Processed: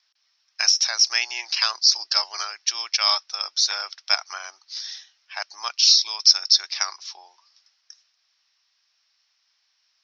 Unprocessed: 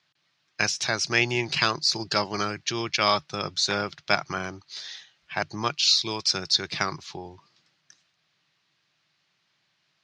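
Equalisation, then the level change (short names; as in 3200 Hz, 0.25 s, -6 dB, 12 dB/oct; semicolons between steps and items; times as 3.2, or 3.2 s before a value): HPF 740 Hz 24 dB/oct; synth low-pass 5500 Hz, resonance Q 11; air absorption 64 m; -3.0 dB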